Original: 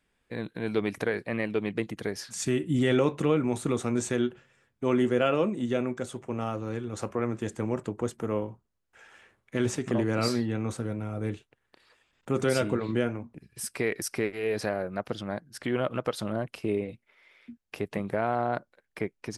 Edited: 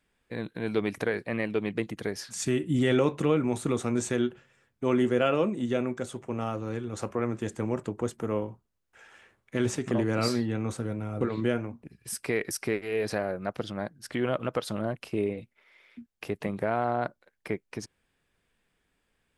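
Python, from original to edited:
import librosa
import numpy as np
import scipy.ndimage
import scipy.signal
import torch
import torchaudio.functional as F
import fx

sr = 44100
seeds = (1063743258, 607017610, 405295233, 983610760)

y = fx.edit(x, sr, fx.cut(start_s=11.21, length_s=1.51), tone=tone)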